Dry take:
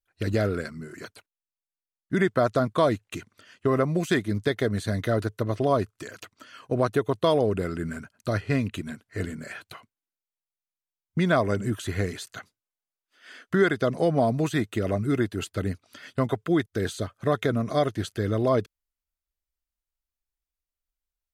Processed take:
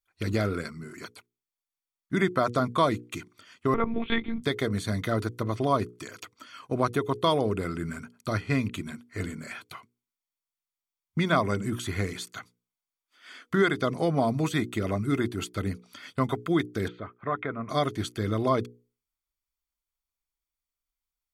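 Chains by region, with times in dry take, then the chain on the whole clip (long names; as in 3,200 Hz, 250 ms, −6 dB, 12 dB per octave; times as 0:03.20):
0:03.74–0:04.42: high-pass filter 110 Hz + one-pitch LPC vocoder at 8 kHz 230 Hz
0:16.88–0:17.69: low-pass filter 2,200 Hz 24 dB per octave + low-shelf EQ 490 Hz −9 dB
whole clip: low-shelf EQ 140 Hz −7 dB; mains-hum notches 60/120/180/240/300/360/420/480 Hz; comb filter 0.9 ms, depth 40%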